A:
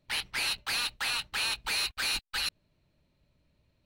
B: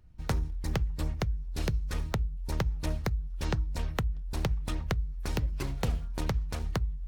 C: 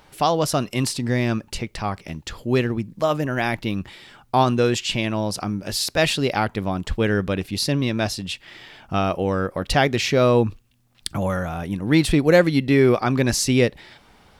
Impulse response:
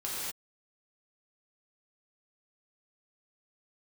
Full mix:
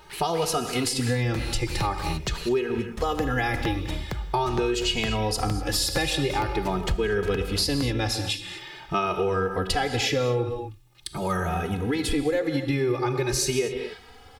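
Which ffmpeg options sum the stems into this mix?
-filter_complex "[0:a]volume=-8.5dB[link_01];[1:a]adelay=1050,volume=-2dB,asplit=3[link_02][link_03][link_04];[link_02]atrim=end=2.34,asetpts=PTS-STARTPTS,afade=type=out:start_time=2.336:duration=0.004:curve=hsin[link_05];[link_03]atrim=start=2.34:end=2.97,asetpts=PTS-STARTPTS,volume=0[link_06];[link_04]atrim=start=2.97,asetpts=PTS-STARTPTS,afade=type=in:duration=0.004:curve=hsin[link_07];[link_05][link_06][link_07]concat=n=3:v=0:a=1,asplit=2[link_08][link_09];[link_09]volume=-17dB[link_10];[2:a]alimiter=limit=-12.5dB:level=0:latency=1:release=306,aecho=1:1:2.4:0.57,asplit=2[link_11][link_12];[link_12]adelay=2.8,afreqshift=0.45[link_13];[link_11][link_13]amix=inputs=2:normalize=1,volume=2.5dB,asplit=2[link_14][link_15];[link_15]volume=-10.5dB[link_16];[3:a]atrim=start_sample=2205[link_17];[link_10][link_16]amix=inputs=2:normalize=0[link_18];[link_18][link_17]afir=irnorm=-1:irlink=0[link_19];[link_01][link_08][link_14][link_19]amix=inputs=4:normalize=0,acompressor=threshold=-21dB:ratio=6"

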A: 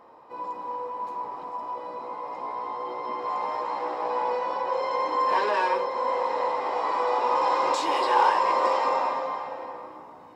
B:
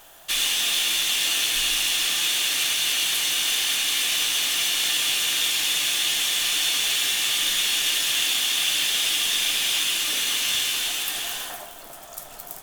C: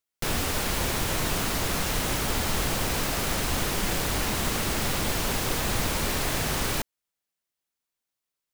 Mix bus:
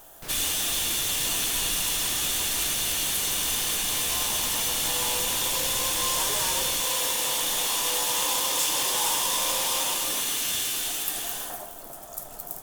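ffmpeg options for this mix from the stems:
ffmpeg -i stem1.wav -i stem2.wav -i stem3.wav -filter_complex "[0:a]asoftclip=type=tanh:threshold=-18.5dB,aeval=exprs='0.119*(cos(1*acos(clip(val(0)/0.119,-1,1)))-cos(1*PI/2))+0.0188*(cos(7*acos(clip(val(0)/0.119,-1,1)))-cos(7*PI/2))':channel_layout=same,aexciter=amount=5.2:drive=9:freq=4900,adelay=850,volume=-9dB[link_01];[1:a]equalizer=frequency=2700:width=0.54:gain=-11,volume=2.5dB[link_02];[2:a]asoftclip=type=tanh:threshold=-24dB,volume=-10dB[link_03];[link_01][link_02][link_03]amix=inputs=3:normalize=0" out.wav

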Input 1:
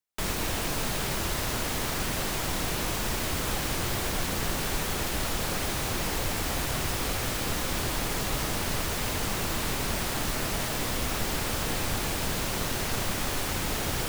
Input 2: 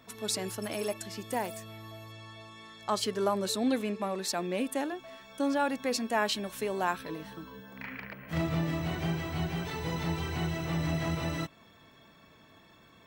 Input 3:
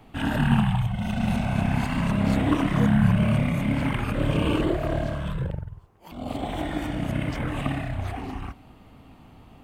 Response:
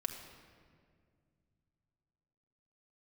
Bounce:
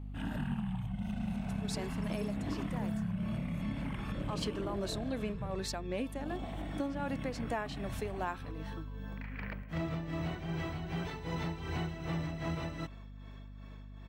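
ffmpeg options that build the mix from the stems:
-filter_complex "[1:a]lowpass=frequency=3600:poles=1,tremolo=f=2.6:d=0.71,adelay=1400,volume=1dB[link_01];[2:a]equalizer=frequency=190:width_type=o:width=0.41:gain=10,aeval=exprs='val(0)+0.0224*(sin(2*PI*50*n/s)+sin(2*PI*2*50*n/s)/2+sin(2*PI*3*50*n/s)/3+sin(2*PI*4*50*n/s)/4+sin(2*PI*5*50*n/s)/5)':channel_layout=same,volume=-14.5dB[link_02];[link_01][link_02]amix=inputs=2:normalize=0,aeval=exprs='val(0)+0.00447*(sin(2*PI*50*n/s)+sin(2*PI*2*50*n/s)/2+sin(2*PI*3*50*n/s)/3+sin(2*PI*4*50*n/s)/4+sin(2*PI*5*50*n/s)/5)':channel_layout=same,acompressor=threshold=-32dB:ratio=6"

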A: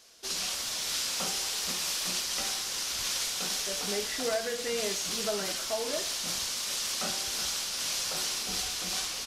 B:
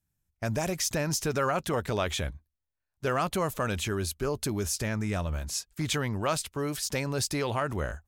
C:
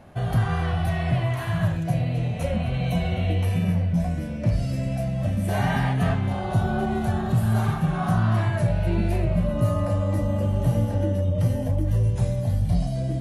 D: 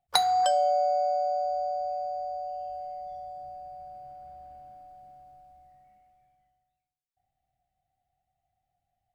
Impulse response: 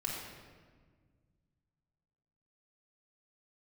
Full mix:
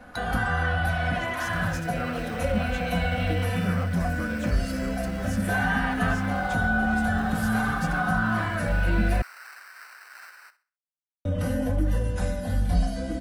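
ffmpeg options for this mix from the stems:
-filter_complex "[0:a]acrusher=samples=13:mix=1:aa=0.000001,highpass=1400,adelay=1250,volume=-13.5dB,asplit=2[link_01][link_02];[link_02]volume=-15.5dB[link_03];[1:a]adelay=600,volume=-13.5dB[link_04];[2:a]equalizer=frequency=150:width_type=o:width=0.75:gain=-5,aecho=1:1:4:0.97,volume=-1dB,asplit=3[link_05][link_06][link_07];[link_05]atrim=end=9.22,asetpts=PTS-STARTPTS,afade=type=out:start_time=9.216:duration=0.004:curve=hsin[link_08];[link_06]atrim=start=9.22:end=11.25,asetpts=PTS-STARTPTS,volume=0[link_09];[link_07]atrim=start=11.25,asetpts=PTS-STARTPTS,afade=type=in:duration=0.004:curve=hsin[link_10];[link_08][link_09][link_10]concat=n=3:v=0:a=1[link_11];[3:a]volume=-17.5dB[link_12];[link_03]aecho=0:1:65|130|195|260:1|0.31|0.0961|0.0298[link_13];[link_01][link_04][link_11][link_12][link_13]amix=inputs=5:normalize=0,equalizer=frequency=1500:width=3.3:gain=11.5,acrossover=split=250[link_14][link_15];[link_15]acompressor=threshold=-25dB:ratio=2.5[link_16];[link_14][link_16]amix=inputs=2:normalize=0"

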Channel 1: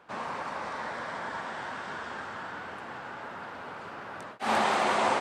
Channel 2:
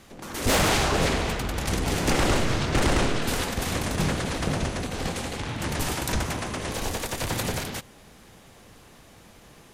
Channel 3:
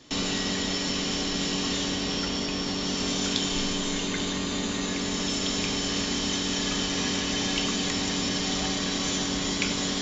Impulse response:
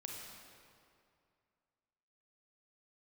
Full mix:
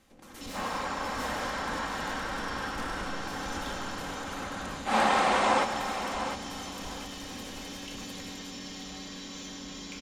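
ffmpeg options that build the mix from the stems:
-filter_complex "[0:a]adelay=450,volume=1dB,asplit=2[link_01][link_02];[link_02]volume=-9dB[link_03];[1:a]volume=-13.5dB,asplit=2[link_04][link_05];[link_05]volume=-7dB[link_06];[2:a]adelay=300,volume=-12.5dB,asplit=2[link_07][link_08];[link_08]volume=-8dB[link_09];[link_04][link_07]amix=inputs=2:normalize=0,asoftclip=type=tanh:threshold=-34dB,alimiter=level_in=15dB:limit=-24dB:level=0:latency=1,volume=-15dB,volume=0dB[link_10];[3:a]atrim=start_sample=2205[link_11];[link_09][link_11]afir=irnorm=-1:irlink=0[link_12];[link_03][link_06]amix=inputs=2:normalize=0,aecho=0:1:704|1408|2112|2816:1|0.29|0.0841|0.0244[link_13];[link_01][link_10][link_12][link_13]amix=inputs=4:normalize=0,aecho=1:1:3.8:0.37"

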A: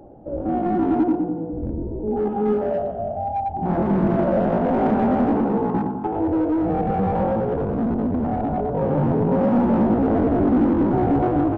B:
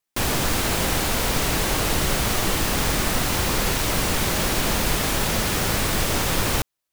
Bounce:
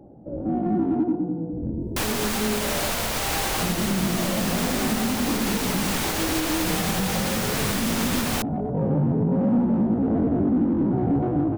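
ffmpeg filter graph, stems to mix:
ffmpeg -i stem1.wav -i stem2.wav -filter_complex "[0:a]equalizer=frequency=170:width=0.62:gain=11.5,volume=-9dB[link_01];[1:a]acrossover=split=400|3000[link_02][link_03][link_04];[link_02]acompressor=threshold=-28dB:ratio=6[link_05];[link_05][link_03][link_04]amix=inputs=3:normalize=0,adelay=1800,volume=1dB[link_06];[link_01][link_06]amix=inputs=2:normalize=0,alimiter=limit=-14dB:level=0:latency=1:release=323" out.wav

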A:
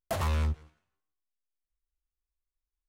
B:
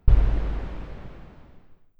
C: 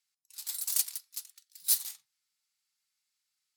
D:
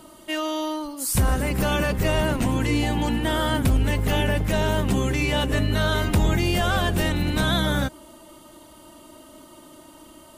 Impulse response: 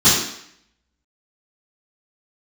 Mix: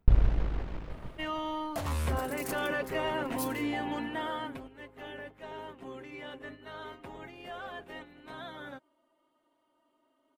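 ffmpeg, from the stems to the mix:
-filter_complex "[0:a]adelay=1650,volume=-4dB[link_01];[1:a]aeval=exprs='if(lt(val(0),0),0.447*val(0),val(0))':channel_layout=same,volume=-1.5dB[link_02];[2:a]adelay=1700,volume=-14dB[link_03];[3:a]acrossover=split=270 3000:gain=0.126 1 0.141[link_04][link_05][link_06];[link_04][link_05][link_06]amix=inputs=3:normalize=0,aecho=1:1:7.4:0.48,adelay=900,volume=-6.5dB,afade=type=out:start_time=3.95:duration=0.71:silence=0.281838[link_07];[link_01][link_02][link_03][link_07]amix=inputs=4:normalize=0,agate=range=-7dB:threshold=-45dB:ratio=16:detection=peak,asoftclip=type=tanh:threshold=-7dB"

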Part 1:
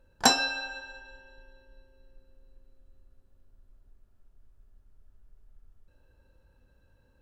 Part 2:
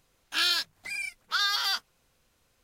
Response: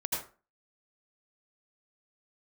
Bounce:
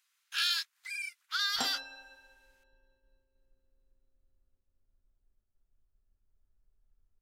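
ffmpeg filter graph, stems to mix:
-filter_complex "[0:a]agate=range=-33dB:threshold=-54dB:ratio=3:detection=peak,adelay=1350,volume=-15dB[link_01];[1:a]highpass=frequency=1300:width=0.5412,highpass=frequency=1300:width=1.3066,volume=-4.5dB[link_02];[link_01][link_02]amix=inputs=2:normalize=0"

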